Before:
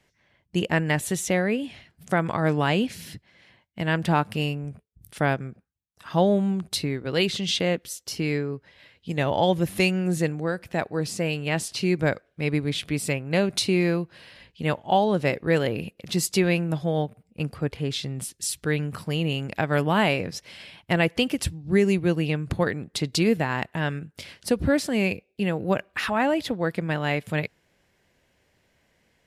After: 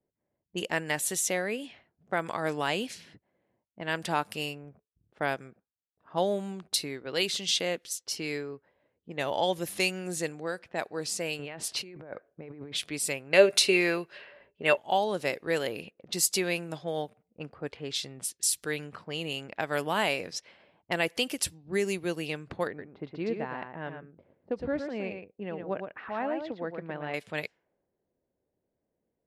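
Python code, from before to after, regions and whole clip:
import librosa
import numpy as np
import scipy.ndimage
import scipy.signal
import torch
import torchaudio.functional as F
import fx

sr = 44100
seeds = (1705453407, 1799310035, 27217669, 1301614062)

y = fx.chain(x, sr, fx.highpass(hz=48.0, slope=12),
    fx.peak_eq(hz=7000.0, db=-9.0, octaves=2.1),
    fx.over_compress(threshold_db=-32.0, ratio=-1.0), at=(11.39, 12.77))
y = fx.chain(y, sr, fx.peak_eq(hz=1800.0, db=8.5, octaves=1.8),
    fx.small_body(hz=(410.0, 580.0, 2700.0), ring_ms=90, db=14), at=(13.33, 14.77))
y = fx.chain(y, sr, fx.spacing_loss(db_at_10k=43),
    fx.echo_single(ms=114, db=-6.5), at=(22.67, 27.14))
y = fx.bass_treble(y, sr, bass_db=-10, treble_db=8)
y = fx.env_lowpass(y, sr, base_hz=390.0, full_db=-23.5)
y = fx.low_shelf(y, sr, hz=140.0, db=-5.0)
y = F.gain(torch.from_numpy(y), -5.0).numpy()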